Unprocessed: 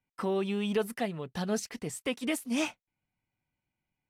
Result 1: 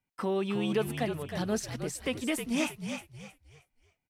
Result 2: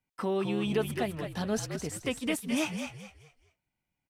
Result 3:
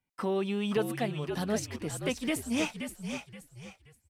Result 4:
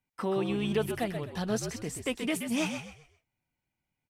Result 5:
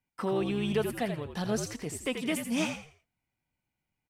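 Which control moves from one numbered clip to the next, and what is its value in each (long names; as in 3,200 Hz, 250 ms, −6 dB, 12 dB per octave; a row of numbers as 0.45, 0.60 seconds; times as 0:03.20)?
echo with shifted repeats, delay time: 314, 212, 526, 129, 84 milliseconds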